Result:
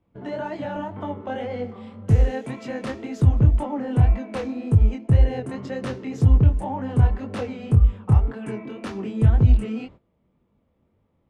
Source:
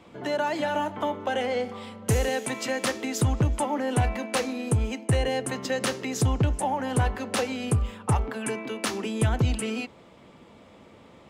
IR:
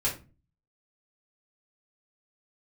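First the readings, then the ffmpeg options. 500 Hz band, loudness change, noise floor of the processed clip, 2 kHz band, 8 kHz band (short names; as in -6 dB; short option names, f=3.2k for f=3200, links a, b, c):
-2.5 dB, +5.0 dB, -68 dBFS, -7.0 dB, under -15 dB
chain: -af "flanger=delay=19.5:depth=7.3:speed=1.9,aemphasis=mode=reproduction:type=riaa,agate=range=-18dB:threshold=-42dB:ratio=16:detection=peak,volume=-2dB"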